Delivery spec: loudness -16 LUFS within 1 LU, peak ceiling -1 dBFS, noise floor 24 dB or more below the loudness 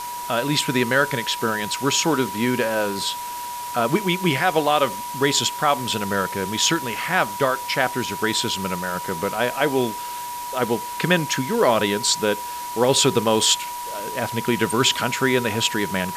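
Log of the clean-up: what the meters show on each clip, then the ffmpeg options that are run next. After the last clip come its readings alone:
steady tone 970 Hz; tone level -29 dBFS; noise floor -31 dBFS; noise floor target -46 dBFS; loudness -21.5 LUFS; peak -4.5 dBFS; loudness target -16.0 LUFS
-> -af "bandreject=f=970:w=30"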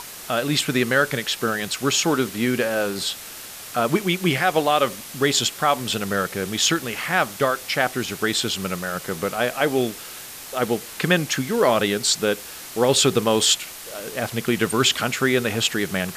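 steady tone none; noise floor -38 dBFS; noise floor target -46 dBFS
-> -af "afftdn=nr=8:nf=-38"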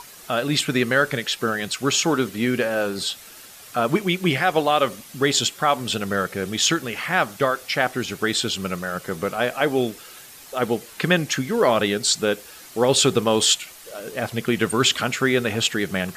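noise floor -44 dBFS; noise floor target -46 dBFS
-> -af "afftdn=nr=6:nf=-44"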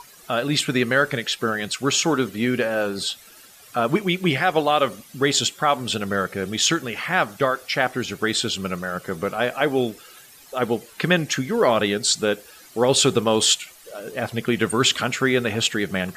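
noise floor -48 dBFS; loudness -22.0 LUFS; peak -4.5 dBFS; loudness target -16.0 LUFS
-> -af "volume=6dB,alimiter=limit=-1dB:level=0:latency=1"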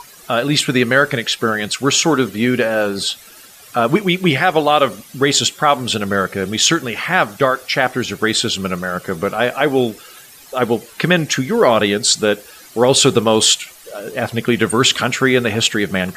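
loudness -16.0 LUFS; peak -1.0 dBFS; noise floor -42 dBFS

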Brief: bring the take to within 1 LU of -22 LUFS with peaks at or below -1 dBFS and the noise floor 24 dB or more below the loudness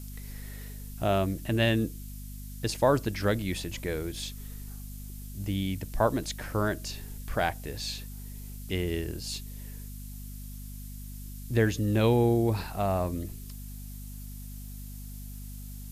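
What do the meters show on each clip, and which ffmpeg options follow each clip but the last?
hum 50 Hz; harmonics up to 250 Hz; hum level -39 dBFS; noise floor -42 dBFS; noise floor target -54 dBFS; loudness -29.5 LUFS; peak -11.5 dBFS; loudness target -22.0 LUFS
-> -af "bandreject=f=50:t=h:w=4,bandreject=f=100:t=h:w=4,bandreject=f=150:t=h:w=4,bandreject=f=200:t=h:w=4,bandreject=f=250:t=h:w=4"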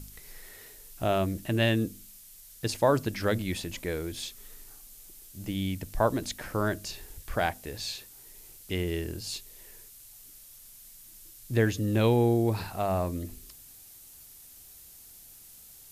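hum none; noise floor -51 dBFS; noise floor target -54 dBFS
-> -af "afftdn=nr=6:nf=-51"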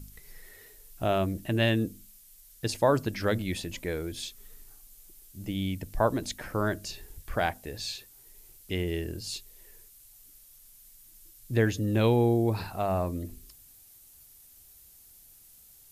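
noise floor -55 dBFS; loudness -29.5 LUFS; peak -11.0 dBFS; loudness target -22.0 LUFS
-> -af "volume=7.5dB"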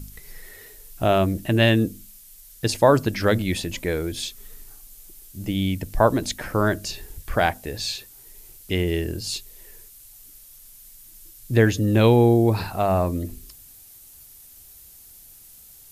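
loudness -22.0 LUFS; peak -3.5 dBFS; noise floor -48 dBFS

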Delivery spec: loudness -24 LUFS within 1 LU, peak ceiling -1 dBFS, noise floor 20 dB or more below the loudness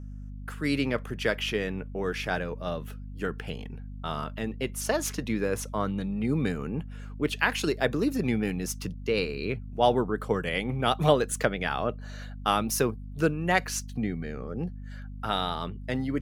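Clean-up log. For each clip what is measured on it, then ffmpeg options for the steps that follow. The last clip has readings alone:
hum 50 Hz; harmonics up to 250 Hz; hum level -37 dBFS; loudness -29.0 LUFS; peak -7.0 dBFS; loudness target -24.0 LUFS
-> -af "bandreject=f=50:t=h:w=4,bandreject=f=100:t=h:w=4,bandreject=f=150:t=h:w=4,bandreject=f=200:t=h:w=4,bandreject=f=250:t=h:w=4"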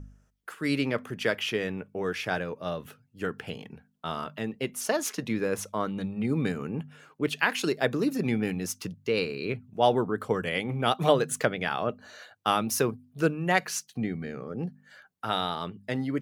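hum none; loudness -29.5 LUFS; peak -7.0 dBFS; loudness target -24.0 LUFS
-> -af "volume=5.5dB"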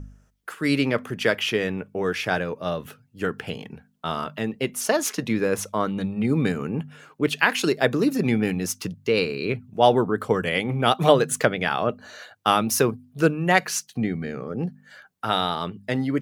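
loudness -24.0 LUFS; peak -1.5 dBFS; noise floor -59 dBFS

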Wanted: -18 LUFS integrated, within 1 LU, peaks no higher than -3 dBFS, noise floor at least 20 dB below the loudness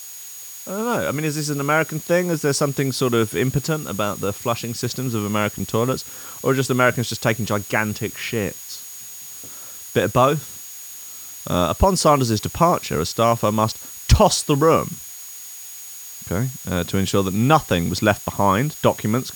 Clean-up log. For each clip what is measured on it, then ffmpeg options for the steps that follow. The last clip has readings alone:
steady tone 6700 Hz; tone level -38 dBFS; noise floor -37 dBFS; noise floor target -41 dBFS; loudness -20.5 LUFS; peak -2.5 dBFS; loudness target -18.0 LUFS
-> -af "bandreject=f=6.7k:w=30"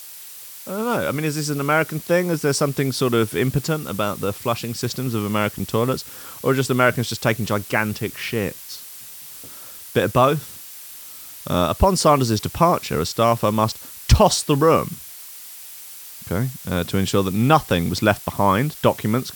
steady tone none; noise floor -39 dBFS; noise floor target -41 dBFS
-> -af "afftdn=nr=6:nf=-39"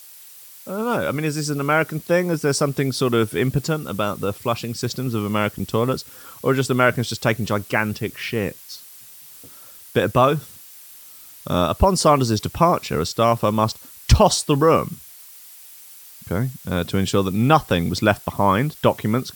noise floor -43 dBFS; loudness -20.5 LUFS; peak -3.0 dBFS; loudness target -18.0 LUFS
-> -af "volume=2.5dB,alimiter=limit=-3dB:level=0:latency=1"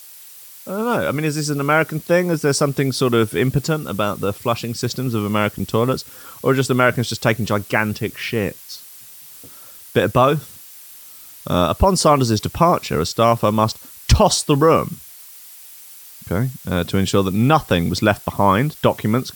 loudness -18.5 LUFS; peak -3.0 dBFS; noise floor -41 dBFS

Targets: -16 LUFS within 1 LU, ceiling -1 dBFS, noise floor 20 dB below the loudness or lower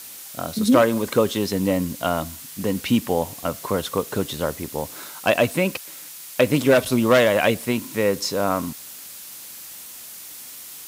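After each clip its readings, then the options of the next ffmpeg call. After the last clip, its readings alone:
noise floor -39 dBFS; noise floor target -42 dBFS; loudness -22.0 LUFS; peak -3.0 dBFS; loudness target -16.0 LUFS
-> -af "afftdn=nr=6:nf=-39"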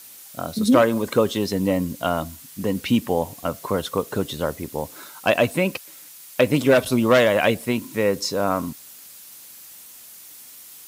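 noise floor -44 dBFS; loudness -22.0 LUFS; peak -3.0 dBFS; loudness target -16.0 LUFS
-> -af "volume=6dB,alimiter=limit=-1dB:level=0:latency=1"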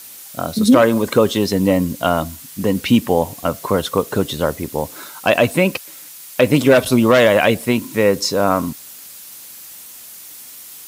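loudness -16.5 LUFS; peak -1.0 dBFS; noise floor -38 dBFS

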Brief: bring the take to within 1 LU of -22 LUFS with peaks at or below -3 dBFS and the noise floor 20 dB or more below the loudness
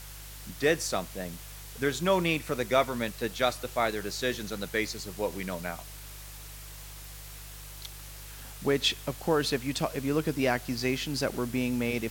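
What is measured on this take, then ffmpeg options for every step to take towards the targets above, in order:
hum 50 Hz; harmonics up to 150 Hz; hum level -44 dBFS; noise floor -44 dBFS; noise floor target -50 dBFS; loudness -29.5 LUFS; peak -12.5 dBFS; loudness target -22.0 LUFS
-> -af "bandreject=f=50:t=h:w=4,bandreject=f=100:t=h:w=4,bandreject=f=150:t=h:w=4"
-af "afftdn=nr=6:nf=-44"
-af "volume=7.5dB"

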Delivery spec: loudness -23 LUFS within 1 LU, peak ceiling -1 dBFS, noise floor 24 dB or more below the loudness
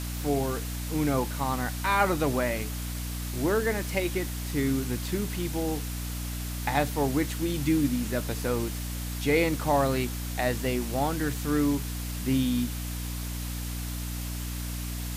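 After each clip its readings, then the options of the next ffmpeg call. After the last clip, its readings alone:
hum 60 Hz; harmonics up to 300 Hz; hum level -32 dBFS; noise floor -34 dBFS; noise floor target -53 dBFS; loudness -29.0 LUFS; peak -10.5 dBFS; loudness target -23.0 LUFS
-> -af "bandreject=f=60:t=h:w=4,bandreject=f=120:t=h:w=4,bandreject=f=180:t=h:w=4,bandreject=f=240:t=h:w=4,bandreject=f=300:t=h:w=4"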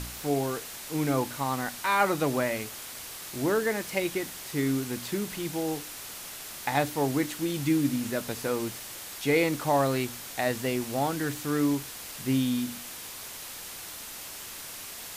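hum none; noise floor -41 dBFS; noise floor target -54 dBFS
-> -af "afftdn=nr=13:nf=-41"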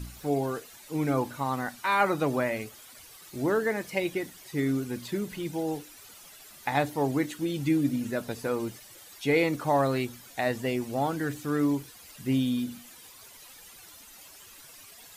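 noise floor -51 dBFS; noise floor target -54 dBFS
-> -af "afftdn=nr=6:nf=-51"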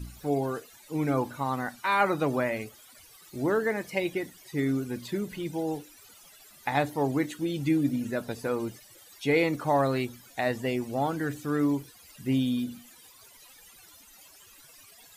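noise floor -54 dBFS; loudness -29.5 LUFS; peak -10.5 dBFS; loudness target -23.0 LUFS
-> -af "volume=6.5dB"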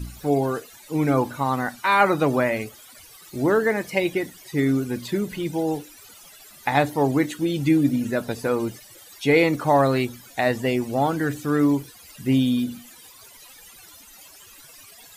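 loudness -23.0 LUFS; peak -4.0 dBFS; noise floor -48 dBFS

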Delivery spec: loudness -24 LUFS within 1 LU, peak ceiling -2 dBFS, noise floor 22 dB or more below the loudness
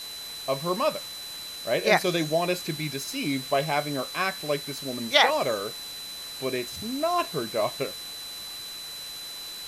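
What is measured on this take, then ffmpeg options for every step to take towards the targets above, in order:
steady tone 4000 Hz; tone level -37 dBFS; noise floor -39 dBFS; noise floor target -50 dBFS; loudness -27.5 LUFS; peak -3.5 dBFS; loudness target -24.0 LUFS
-> -af "bandreject=f=4k:w=30"
-af "afftdn=nr=11:nf=-39"
-af "volume=3.5dB,alimiter=limit=-2dB:level=0:latency=1"

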